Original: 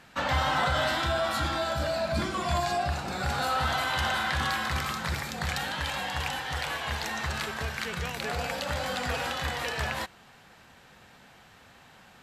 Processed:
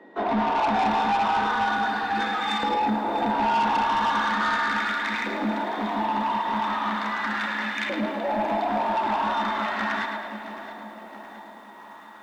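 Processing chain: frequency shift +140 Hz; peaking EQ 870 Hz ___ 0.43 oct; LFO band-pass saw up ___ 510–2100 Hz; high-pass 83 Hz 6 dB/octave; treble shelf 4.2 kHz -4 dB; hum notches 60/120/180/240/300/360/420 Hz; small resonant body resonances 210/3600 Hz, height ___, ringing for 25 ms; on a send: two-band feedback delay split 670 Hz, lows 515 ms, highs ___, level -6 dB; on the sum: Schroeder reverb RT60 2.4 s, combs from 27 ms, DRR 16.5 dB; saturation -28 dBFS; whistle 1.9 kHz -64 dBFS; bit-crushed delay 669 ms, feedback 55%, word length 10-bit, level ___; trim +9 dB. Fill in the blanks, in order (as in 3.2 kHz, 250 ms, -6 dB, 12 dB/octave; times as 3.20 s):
+5 dB, 0.38 Hz, 16 dB, 108 ms, -14 dB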